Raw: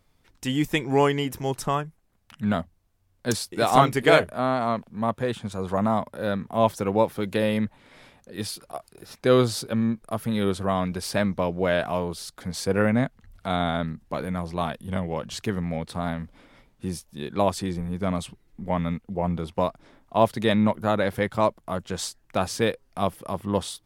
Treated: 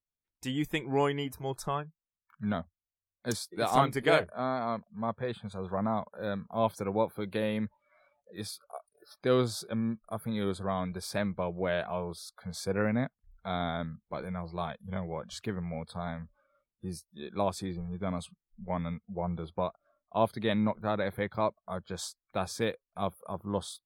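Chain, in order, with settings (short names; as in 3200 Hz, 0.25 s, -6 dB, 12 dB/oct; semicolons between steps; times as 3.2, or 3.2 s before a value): spectral noise reduction 27 dB; gain -7.5 dB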